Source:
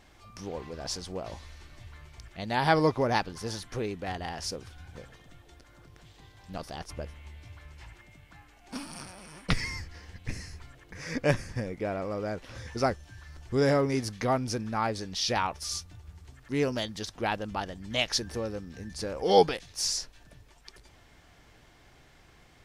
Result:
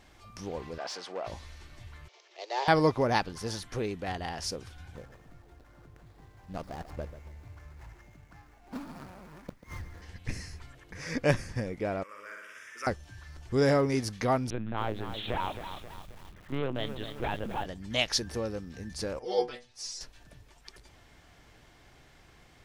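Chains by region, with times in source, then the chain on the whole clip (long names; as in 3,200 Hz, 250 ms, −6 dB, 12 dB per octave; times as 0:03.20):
0:00.78–0:01.27: high-pass filter 99 Hz 24 dB per octave + mid-hump overdrive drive 15 dB, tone 1,400 Hz, clips at −21.5 dBFS + meter weighting curve A
0:02.08–0:02.68: variable-slope delta modulation 32 kbit/s + Butterworth high-pass 360 Hz 72 dB per octave + parametric band 1,500 Hz −9 dB 0.83 octaves
0:04.96–0:10.02: running median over 15 samples + gate with flip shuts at −25 dBFS, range −30 dB + feedback echo at a low word length 140 ms, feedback 35%, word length 10 bits, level −13 dB
0:12.03–0:12.87: high-pass filter 1,100 Hz + phaser with its sweep stopped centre 1,800 Hz, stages 4 + flutter between parallel walls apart 10.2 metres, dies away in 1.2 s
0:14.50–0:17.66: hard clipping −28.5 dBFS + linear-prediction vocoder at 8 kHz pitch kept + feedback echo at a low word length 268 ms, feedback 55%, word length 8 bits, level −9 dB
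0:19.19–0:20.01: low-pass filter 8,200 Hz + parametric band 110 Hz −6.5 dB 0.75 octaves + stiff-string resonator 120 Hz, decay 0.23 s, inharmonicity 0.002
whole clip: no processing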